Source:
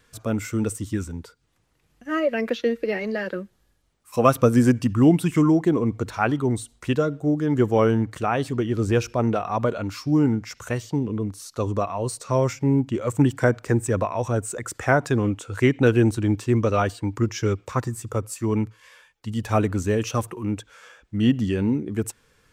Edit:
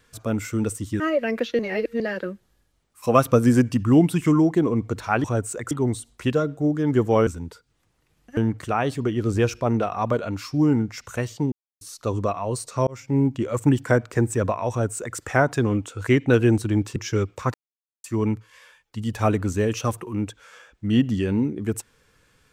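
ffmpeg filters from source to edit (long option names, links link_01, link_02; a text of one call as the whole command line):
ffmpeg -i in.wav -filter_complex "[0:a]asplit=14[link_01][link_02][link_03][link_04][link_05][link_06][link_07][link_08][link_09][link_10][link_11][link_12][link_13][link_14];[link_01]atrim=end=1.002[link_15];[link_02]atrim=start=2.098:end=2.692[link_16];[link_03]atrim=start=2.688:end=3.102,asetpts=PTS-STARTPTS,areverse[link_17];[link_04]atrim=start=3.098:end=6.342[link_18];[link_05]atrim=start=14.228:end=14.702[link_19];[link_06]atrim=start=6.338:end=7.902[link_20];[link_07]atrim=start=0.998:end=2.102[link_21];[link_08]atrim=start=7.898:end=11.05,asetpts=PTS-STARTPTS,afade=type=out:start_time=3.148:duration=0.004:curve=hsin[link_22];[link_09]atrim=start=11.05:end=11.34,asetpts=PTS-STARTPTS,volume=0[link_23];[link_10]atrim=start=11.34:end=12.4,asetpts=PTS-STARTPTS,afade=type=in:duration=0.004:curve=hsin,afade=type=out:start_time=1.056:duration=0.004:curve=hsin[link_24];[link_11]atrim=start=12.4:end=16.492,asetpts=PTS-STARTPTS,afade=type=in:duration=0.31[link_25];[link_12]atrim=start=17.258:end=17.84,asetpts=PTS-STARTPTS,afade=type=out:start_time=0.578:duration=0.004:curve=hsin[link_26];[link_13]atrim=start=17.84:end=18.34,asetpts=PTS-STARTPTS,volume=0[link_27];[link_14]atrim=start=18.34,asetpts=PTS-STARTPTS,afade=type=in:duration=0.004:curve=hsin[link_28];[link_15][link_16]acrossfade=duration=0.004:curve1=hsin:curve2=hsin[link_29];[link_29][link_17]acrossfade=duration=0.004:curve1=hsin:curve2=hsin[link_30];[link_30][link_18]acrossfade=duration=0.004:curve1=hsin:curve2=hsin[link_31];[link_31][link_19]acrossfade=duration=0.004:curve1=hsin:curve2=hsin[link_32];[link_32][link_20]acrossfade=duration=0.004:curve1=hsin:curve2=hsin[link_33];[link_33][link_21]acrossfade=duration=0.004:curve1=hsin:curve2=hsin[link_34];[link_22][link_23][link_24][link_25]concat=n=4:v=0:a=1[link_35];[link_34][link_35]acrossfade=duration=0.004:curve1=hsin:curve2=hsin[link_36];[link_26][link_27][link_28]concat=n=3:v=0:a=1[link_37];[link_36][link_37]acrossfade=duration=0.004:curve1=hsin:curve2=hsin" out.wav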